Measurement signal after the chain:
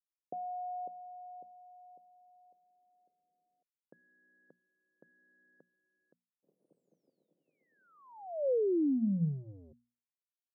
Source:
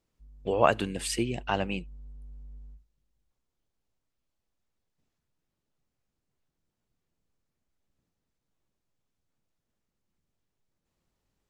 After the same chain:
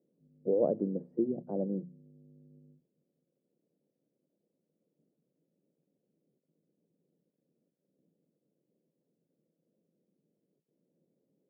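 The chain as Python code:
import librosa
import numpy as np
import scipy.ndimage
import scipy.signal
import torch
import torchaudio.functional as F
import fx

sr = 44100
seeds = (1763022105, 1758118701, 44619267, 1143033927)

y = fx.law_mismatch(x, sr, coded='mu')
y = scipy.signal.sosfilt(scipy.signal.ellip(3, 1.0, 70, [160.0, 540.0], 'bandpass', fs=sr, output='sos'), y)
y = fx.hum_notches(y, sr, base_hz=60, count=4)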